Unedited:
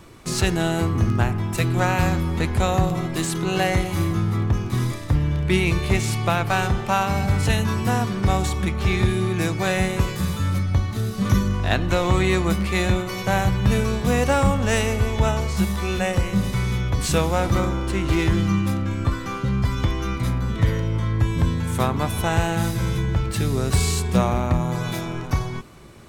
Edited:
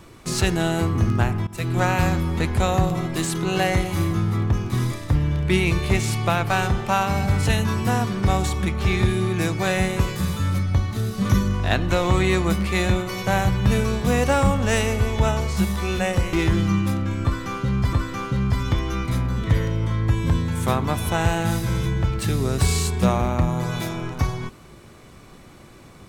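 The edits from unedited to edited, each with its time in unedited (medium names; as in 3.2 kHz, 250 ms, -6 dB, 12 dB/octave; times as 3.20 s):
1.47–1.78 s: fade in, from -18 dB
16.33–18.13 s: delete
19.05–19.73 s: loop, 2 plays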